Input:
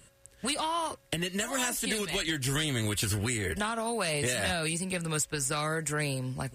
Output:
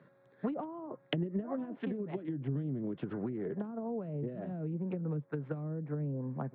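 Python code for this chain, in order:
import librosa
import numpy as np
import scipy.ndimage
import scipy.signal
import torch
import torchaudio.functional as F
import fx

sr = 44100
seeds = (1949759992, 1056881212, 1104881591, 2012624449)

y = fx.wiener(x, sr, points=15)
y = scipy.signal.sosfilt(scipy.signal.cheby1(4, 1.0, [140.0, 3500.0], 'bandpass', fs=sr, output='sos'), y)
y = fx.env_lowpass_down(y, sr, base_hz=320.0, full_db=-29.5)
y = fx.rider(y, sr, range_db=10, speed_s=2.0)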